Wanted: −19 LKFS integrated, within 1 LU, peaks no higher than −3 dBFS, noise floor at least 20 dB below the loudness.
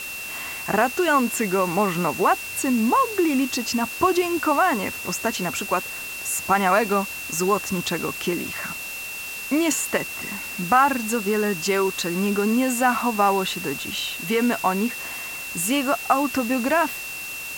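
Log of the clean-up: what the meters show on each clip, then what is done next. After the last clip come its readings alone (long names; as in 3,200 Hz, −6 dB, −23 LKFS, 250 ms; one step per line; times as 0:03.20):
interfering tone 2,700 Hz; level of the tone −32 dBFS; background noise floor −33 dBFS; target noise floor −43 dBFS; integrated loudness −22.5 LKFS; sample peak −6.0 dBFS; target loudness −19.0 LKFS
→ notch filter 2,700 Hz, Q 30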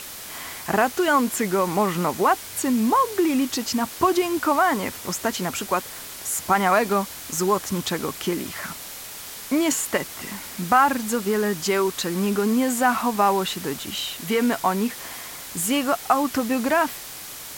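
interfering tone none found; background noise floor −37 dBFS; target noise floor −43 dBFS
→ noise reduction from a noise print 6 dB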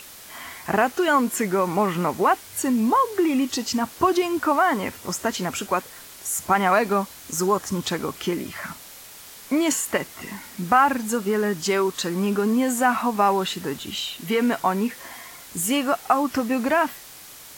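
background noise floor −43 dBFS; integrated loudness −23.0 LKFS; sample peak −6.0 dBFS; target loudness −19.0 LKFS
→ level +4 dB
brickwall limiter −3 dBFS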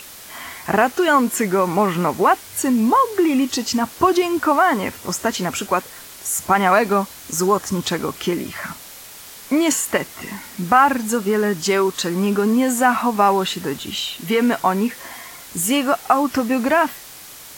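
integrated loudness −19.0 LKFS; sample peak −3.0 dBFS; background noise floor −39 dBFS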